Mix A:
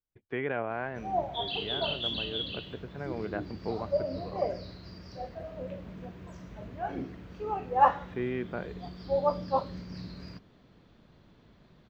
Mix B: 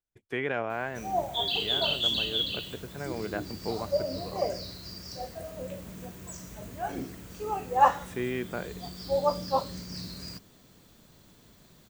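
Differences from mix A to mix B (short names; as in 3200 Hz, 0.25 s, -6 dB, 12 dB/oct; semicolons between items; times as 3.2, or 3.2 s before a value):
speech: remove air absorption 100 m; master: remove air absorption 280 m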